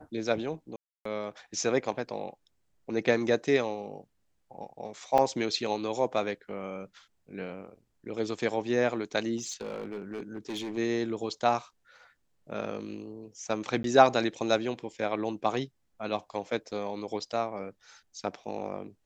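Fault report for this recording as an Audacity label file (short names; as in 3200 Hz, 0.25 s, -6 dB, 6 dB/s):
0.760000	1.050000	gap 0.294 s
5.180000	5.180000	gap 2.6 ms
9.370000	10.780000	clipped -31.5 dBFS
13.830000	13.840000	gap 12 ms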